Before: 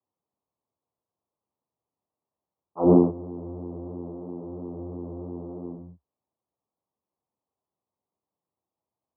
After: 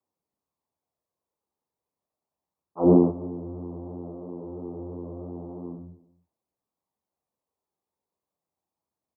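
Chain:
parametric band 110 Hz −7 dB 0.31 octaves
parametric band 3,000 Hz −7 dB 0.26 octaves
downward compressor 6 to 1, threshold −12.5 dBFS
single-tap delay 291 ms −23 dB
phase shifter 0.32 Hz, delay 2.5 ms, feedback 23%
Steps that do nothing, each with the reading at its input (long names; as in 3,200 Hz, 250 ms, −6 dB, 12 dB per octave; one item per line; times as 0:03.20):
parametric band 3,000 Hz: nothing at its input above 1,000 Hz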